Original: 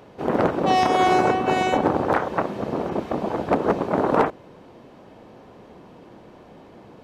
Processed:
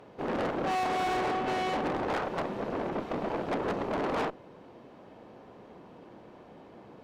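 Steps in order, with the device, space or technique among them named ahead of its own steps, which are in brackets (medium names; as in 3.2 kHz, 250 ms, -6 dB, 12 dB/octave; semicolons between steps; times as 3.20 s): tube preamp driven hard (valve stage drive 27 dB, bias 0.7; bass shelf 130 Hz -5.5 dB; treble shelf 4.5 kHz -7 dB)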